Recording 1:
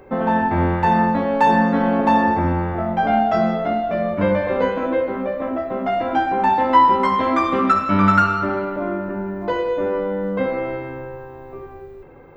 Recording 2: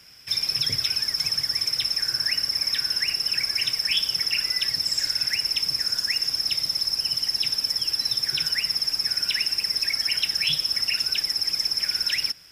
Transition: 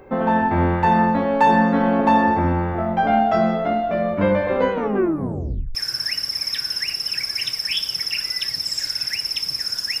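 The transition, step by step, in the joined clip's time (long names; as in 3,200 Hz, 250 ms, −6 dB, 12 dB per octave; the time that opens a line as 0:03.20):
recording 1
0:04.72: tape stop 1.03 s
0:05.75: continue with recording 2 from 0:01.95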